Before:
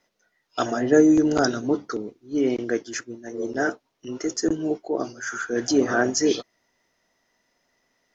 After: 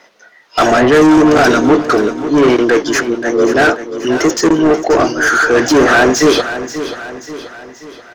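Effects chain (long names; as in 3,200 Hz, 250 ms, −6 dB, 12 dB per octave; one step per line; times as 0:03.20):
mid-hump overdrive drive 31 dB, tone 2,100 Hz, clips at −4.5 dBFS
on a send: repeating echo 533 ms, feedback 49%, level −12 dB
on the sum: level +3.5 dB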